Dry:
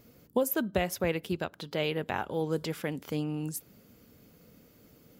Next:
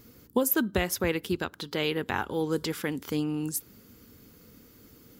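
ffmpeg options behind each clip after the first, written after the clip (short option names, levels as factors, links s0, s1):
-af "equalizer=f=160:t=o:w=0.67:g=-7,equalizer=f=630:t=o:w=0.67:g=-11,equalizer=f=2500:t=o:w=0.67:g=-4,volume=2.11"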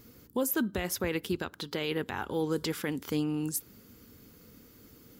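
-af "alimiter=limit=0.106:level=0:latency=1:release=21,volume=0.891"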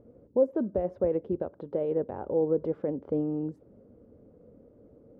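-af "lowpass=f=580:t=q:w=4.9,volume=0.794"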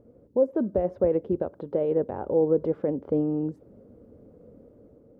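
-af "dynaudnorm=f=110:g=9:m=1.58"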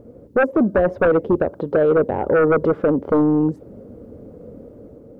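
-af "aeval=exprs='0.282*sin(PI/2*2.51*val(0)/0.282)':c=same"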